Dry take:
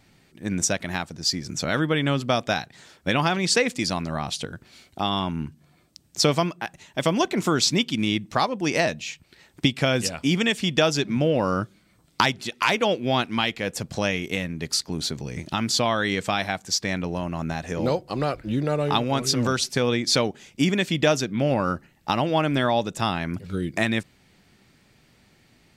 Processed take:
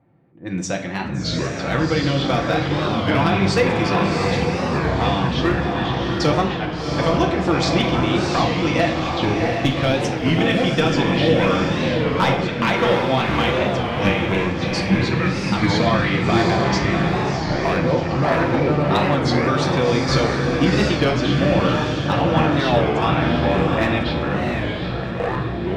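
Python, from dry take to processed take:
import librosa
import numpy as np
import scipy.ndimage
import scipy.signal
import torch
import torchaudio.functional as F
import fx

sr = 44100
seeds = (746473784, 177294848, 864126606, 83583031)

y = scipy.signal.sosfilt(scipy.signal.butter(2, 100.0, 'highpass', fs=sr, output='sos'), x)
y = fx.env_lowpass(y, sr, base_hz=870.0, full_db=-22.0)
y = scipy.signal.sosfilt(scipy.signal.bessel(2, 3400.0, 'lowpass', norm='mag', fs=sr, output='sos'), y)
y = fx.notch_comb(y, sr, f0_hz=210.0)
y = np.clip(y, -10.0 ** (-14.0 / 20.0), 10.0 ** (-14.0 / 20.0))
y = fx.echo_pitch(y, sr, ms=398, semitones=-6, count=2, db_per_echo=-3.0)
y = fx.echo_diffused(y, sr, ms=718, feedback_pct=41, wet_db=-3)
y = fx.room_shoebox(y, sr, seeds[0], volume_m3=320.0, walls='mixed', distance_m=0.73)
y = fx.record_warp(y, sr, rpm=33.33, depth_cents=160.0)
y = y * librosa.db_to_amplitude(2.0)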